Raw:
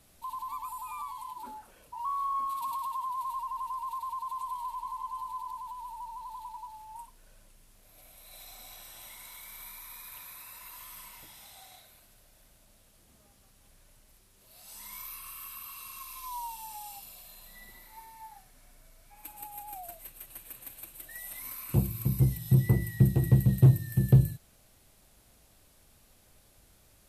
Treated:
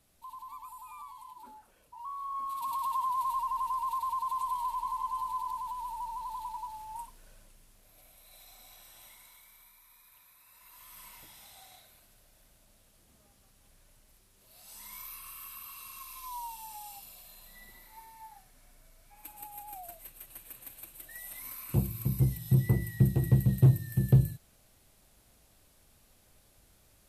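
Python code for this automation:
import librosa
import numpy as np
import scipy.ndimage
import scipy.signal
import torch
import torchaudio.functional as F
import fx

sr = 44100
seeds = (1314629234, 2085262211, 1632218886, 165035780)

y = fx.gain(x, sr, db=fx.line((2.2, -7.5), (2.93, 3.5), (7.01, 3.5), (8.42, -6.0), (9.06, -6.0), (9.72, -14.0), (10.39, -14.0), (11.08, -2.0)))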